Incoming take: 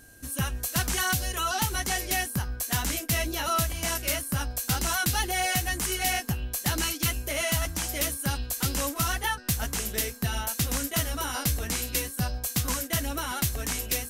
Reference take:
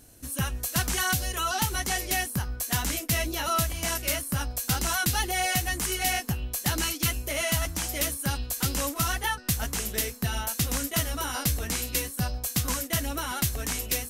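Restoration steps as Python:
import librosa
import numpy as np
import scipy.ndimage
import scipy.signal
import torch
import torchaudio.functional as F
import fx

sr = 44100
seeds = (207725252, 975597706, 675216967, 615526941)

y = fx.fix_declip(x, sr, threshold_db=-18.0)
y = fx.notch(y, sr, hz=1600.0, q=30.0)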